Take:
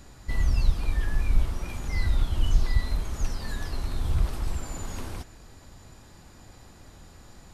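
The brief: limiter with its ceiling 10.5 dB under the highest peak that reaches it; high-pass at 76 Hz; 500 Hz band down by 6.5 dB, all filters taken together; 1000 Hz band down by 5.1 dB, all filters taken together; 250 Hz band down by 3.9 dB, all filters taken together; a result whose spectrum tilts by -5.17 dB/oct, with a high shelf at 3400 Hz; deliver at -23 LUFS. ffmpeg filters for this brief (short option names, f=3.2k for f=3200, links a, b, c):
-af "highpass=76,equalizer=f=250:t=o:g=-3.5,equalizer=f=500:t=o:g=-6.5,equalizer=f=1k:t=o:g=-3.5,highshelf=f=3.4k:g=-8,volume=16dB,alimiter=limit=-10.5dB:level=0:latency=1"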